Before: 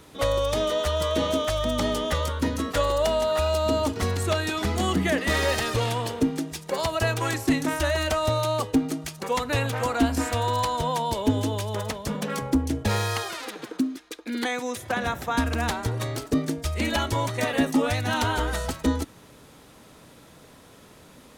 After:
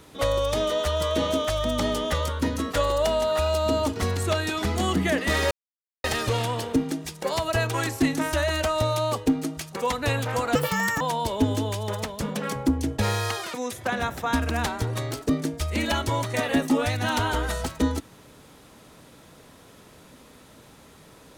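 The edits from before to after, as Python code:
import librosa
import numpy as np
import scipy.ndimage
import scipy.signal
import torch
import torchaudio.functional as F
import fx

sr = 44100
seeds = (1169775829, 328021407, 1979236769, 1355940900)

y = fx.edit(x, sr, fx.insert_silence(at_s=5.51, length_s=0.53),
    fx.speed_span(start_s=10.02, length_s=0.85, speed=1.86),
    fx.cut(start_s=13.4, length_s=1.18), tone=tone)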